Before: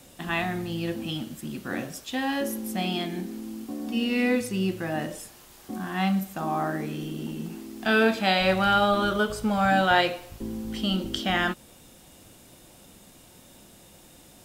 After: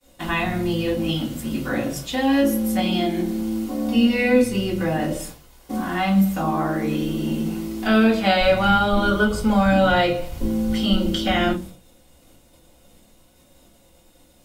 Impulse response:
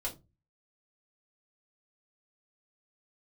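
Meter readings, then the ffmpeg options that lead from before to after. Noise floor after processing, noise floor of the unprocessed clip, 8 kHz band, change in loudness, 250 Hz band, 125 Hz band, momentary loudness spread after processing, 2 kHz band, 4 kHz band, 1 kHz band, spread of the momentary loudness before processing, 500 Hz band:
-55 dBFS, -52 dBFS, +4.5 dB, +5.5 dB, +8.0 dB, +7.0 dB, 9 LU, +2.5 dB, +3.5 dB, +3.0 dB, 15 LU, +6.0 dB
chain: -filter_complex "[0:a]agate=range=-33dB:threshold=-42dB:ratio=3:detection=peak,acrossover=split=300[a][b];[b]acompressor=threshold=-37dB:ratio=1.5[c];[a][c]amix=inputs=2:normalize=0[d];[1:a]atrim=start_sample=2205[e];[d][e]afir=irnorm=-1:irlink=0,volume=7.5dB"

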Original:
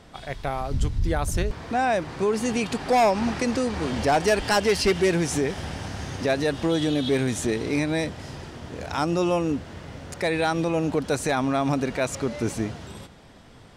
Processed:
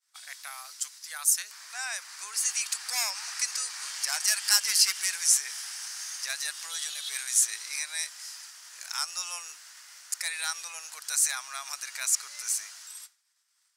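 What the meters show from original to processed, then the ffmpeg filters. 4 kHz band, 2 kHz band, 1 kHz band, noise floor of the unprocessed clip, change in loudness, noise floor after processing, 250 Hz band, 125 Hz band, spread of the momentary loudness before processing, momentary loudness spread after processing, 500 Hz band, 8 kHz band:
+3.0 dB, -5.0 dB, -16.5 dB, -48 dBFS, -3.0 dB, -71 dBFS, under -40 dB, under -40 dB, 12 LU, 18 LU, -33.5 dB, +10.5 dB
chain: -af "agate=range=-33dB:threshold=-37dB:ratio=3:detection=peak,highpass=f=1.3k:w=0.5412,highpass=f=1.3k:w=1.3066,aexciter=amount=7.4:drive=1.6:freq=4.7k,volume=-4.5dB"

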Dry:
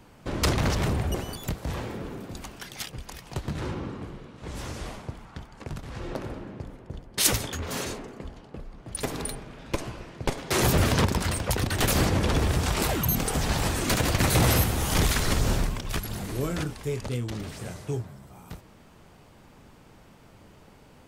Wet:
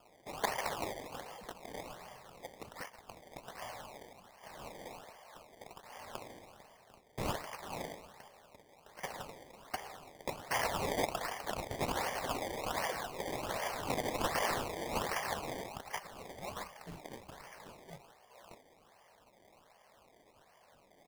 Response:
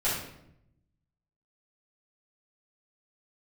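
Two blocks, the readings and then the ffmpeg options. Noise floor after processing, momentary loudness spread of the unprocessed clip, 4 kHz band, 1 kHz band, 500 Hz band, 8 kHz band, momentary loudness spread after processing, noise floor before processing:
-65 dBFS, 18 LU, -13.0 dB, -5.5 dB, -9.0 dB, -15.5 dB, 20 LU, -53 dBFS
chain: -af "aecho=1:1:0.9:0.81,highpass=f=580:t=q:w=0.5412,highpass=f=580:t=q:w=1.307,lowpass=f=3.2k:t=q:w=0.5176,lowpass=f=3.2k:t=q:w=0.7071,lowpass=f=3.2k:t=q:w=1.932,afreqshift=-260,acrusher=samples=22:mix=1:aa=0.000001:lfo=1:lforange=22:lforate=1.3,volume=-6.5dB"

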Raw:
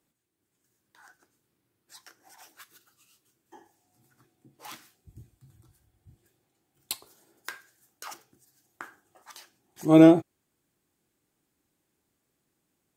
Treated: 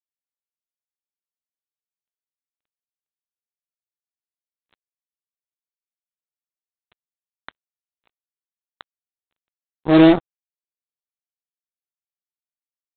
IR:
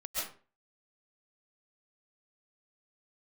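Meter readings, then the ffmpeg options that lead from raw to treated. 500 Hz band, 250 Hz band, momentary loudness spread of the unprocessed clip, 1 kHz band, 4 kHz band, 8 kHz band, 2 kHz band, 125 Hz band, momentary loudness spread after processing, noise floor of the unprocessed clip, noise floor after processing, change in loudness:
+3.0 dB, +3.5 dB, 22 LU, +5.0 dB, +8.0 dB, under -30 dB, +8.0 dB, +3.0 dB, 13 LU, -79 dBFS, under -85 dBFS, +6.5 dB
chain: -af "aeval=exprs='val(0)+0.5*0.112*sgn(val(0))':c=same,aresample=8000,acrusher=bits=2:mix=0:aa=0.5,aresample=44100,volume=1.5dB"

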